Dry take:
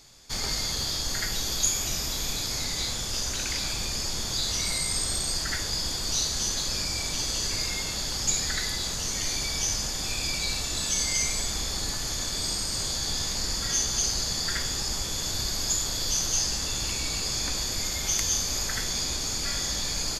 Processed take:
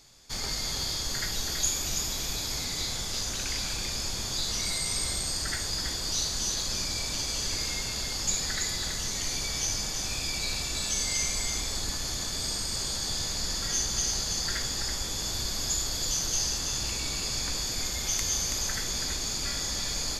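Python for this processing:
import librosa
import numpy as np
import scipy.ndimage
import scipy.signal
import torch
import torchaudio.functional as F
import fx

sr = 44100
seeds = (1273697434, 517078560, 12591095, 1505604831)

p1 = x + fx.echo_single(x, sr, ms=328, db=-6.0, dry=0)
y = F.gain(torch.from_numpy(p1), -3.0).numpy()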